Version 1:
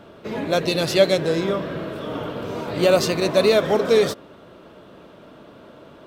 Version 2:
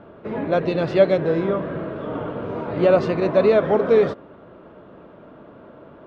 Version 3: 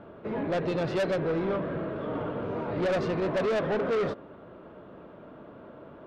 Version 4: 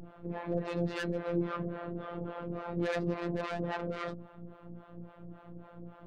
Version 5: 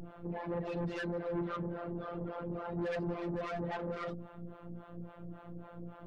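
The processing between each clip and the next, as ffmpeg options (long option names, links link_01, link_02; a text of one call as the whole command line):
ffmpeg -i in.wav -af "lowpass=1700,volume=1dB" out.wav
ffmpeg -i in.wav -af "asoftclip=type=tanh:threshold=-21dB,volume=-3dB" out.wav
ffmpeg -i in.wav -filter_complex "[0:a]aeval=exprs='val(0)+0.0112*(sin(2*PI*60*n/s)+sin(2*PI*2*60*n/s)/2+sin(2*PI*3*60*n/s)/3+sin(2*PI*4*60*n/s)/4+sin(2*PI*5*60*n/s)/5)':channel_layout=same,acrossover=split=510[link_01][link_02];[link_01]aeval=exprs='val(0)*(1-1/2+1/2*cos(2*PI*3.6*n/s))':channel_layout=same[link_03];[link_02]aeval=exprs='val(0)*(1-1/2-1/2*cos(2*PI*3.6*n/s))':channel_layout=same[link_04];[link_03][link_04]amix=inputs=2:normalize=0,afftfilt=real='hypot(re,im)*cos(PI*b)':imag='0':win_size=1024:overlap=0.75,volume=2dB" out.wav
ffmpeg -i in.wav -af "asoftclip=type=tanh:threshold=-33dB,volume=2dB" out.wav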